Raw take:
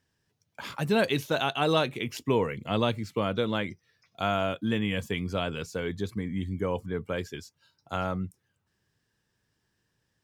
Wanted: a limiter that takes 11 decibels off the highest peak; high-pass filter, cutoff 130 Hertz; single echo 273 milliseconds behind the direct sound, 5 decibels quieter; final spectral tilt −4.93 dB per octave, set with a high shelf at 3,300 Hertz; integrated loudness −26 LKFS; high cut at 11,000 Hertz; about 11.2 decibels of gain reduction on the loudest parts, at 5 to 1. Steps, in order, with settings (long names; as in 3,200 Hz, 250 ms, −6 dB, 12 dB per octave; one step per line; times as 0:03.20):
high-pass filter 130 Hz
low-pass filter 11,000 Hz
high-shelf EQ 3,300 Hz −6 dB
downward compressor 5 to 1, threshold −33 dBFS
brickwall limiter −31 dBFS
single-tap delay 273 ms −5 dB
level +15 dB